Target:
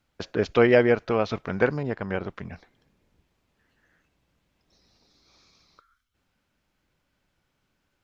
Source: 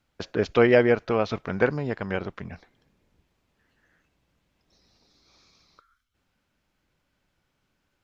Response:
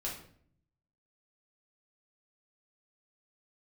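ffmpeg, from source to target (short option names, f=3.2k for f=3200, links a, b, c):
-filter_complex "[0:a]asettb=1/sr,asplit=3[a][b][c];[a]atrim=end=1.834[d];[b]atrim=start=1.83:end=2.26,asetpts=PTS-STARTPTS,afade=t=in:d=0.004:c=qsin,afade=t=out:st=0.426:d=0.004:c=qsin,adynamicequalizer=threshold=0.00501:dfrequency=2200:dqfactor=0.7:tfrequency=2200:tqfactor=0.7:attack=5:release=100:ratio=0.375:range=2.5:mode=cutabove:tftype=highshelf[e];[c]atrim=start=2.256[f];[d][e]acrossfade=d=0.004:c1=hsin:c2=qsin[g];[g][f]acrossfade=d=0.004:c1=qsin:c2=hsin"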